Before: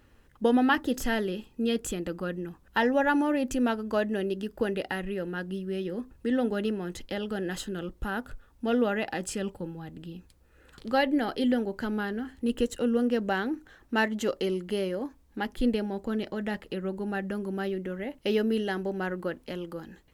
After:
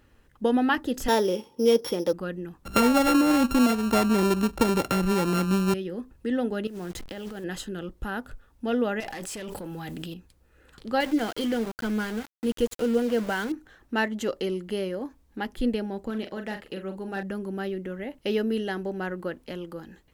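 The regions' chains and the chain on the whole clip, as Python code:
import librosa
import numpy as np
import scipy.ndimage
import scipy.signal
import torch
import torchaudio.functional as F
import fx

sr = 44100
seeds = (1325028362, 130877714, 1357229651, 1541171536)

y = fx.chain(x, sr, fx.sample_sort(block=8),
    fx.highpass(hz=140.0, slope=12),
    fx.small_body(hz=(520.0, 880.0, 3300.0), ring_ms=20, db=14), at=(1.08, 2.13))
y = fx.chain(y, sr, fx.sample_sort(block=32),
    fx.low_shelf(hz=480.0, db=9.5),
    fx.band_squash(depth_pct=70), at=(2.65, 5.74))
y = fx.chain(y, sr, fx.delta_hold(step_db=-43.5),
    fx.over_compress(threshold_db=-36.0, ratio=-1.0), at=(6.67, 7.44))
y = fx.chain(y, sr, fx.tilt_eq(slope=2.0),
    fx.tube_stage(drive_db=34.0, bias=0.3),
    fx.env_flatten(amount_pct=100), at=(9.0, 10.14))
y = fx.chain(y, sr, fx.ripple_eq(per_octave=1.8, db=8),
    fx.sample_gate(floor_db=-34.5), at=(11.0, 13.52))
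y = fx.chain(y, sr, fx.clip_hard(threshold_db=-23.0),
    fx.low_shelf(hz=220.0, db=-5.5),
    fx.doubler(ms=41.0, db=-8.0), at=(16.1, 17.23))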